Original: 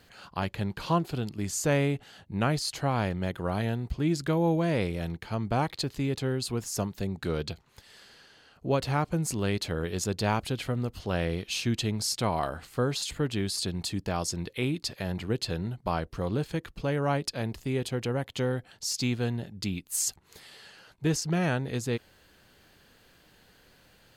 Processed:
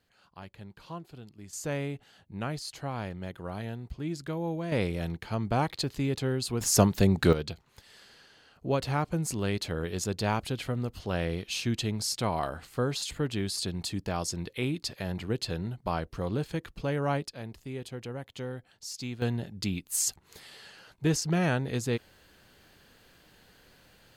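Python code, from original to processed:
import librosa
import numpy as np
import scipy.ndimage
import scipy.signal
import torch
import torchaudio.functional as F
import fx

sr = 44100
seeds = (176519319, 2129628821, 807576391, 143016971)

y = fx.gain(x, sr, db=fx.steps((0.0, -15.0), (1.53, -7.5), (4.72, 0.0), (6.61, 9.5), (7.33, -1.5), (17.24, -8.5), (19.22, 0.5)))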